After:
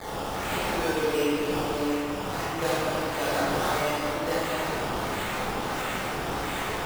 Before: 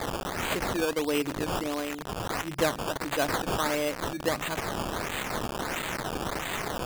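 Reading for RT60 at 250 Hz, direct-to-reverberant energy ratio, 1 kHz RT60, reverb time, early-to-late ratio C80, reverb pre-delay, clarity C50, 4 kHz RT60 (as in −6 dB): 2.5 s, −10.5 dB, 2.9 s, 2.8 s, −3.0 dB, 20 ms, −5.5 dB, 1.8 s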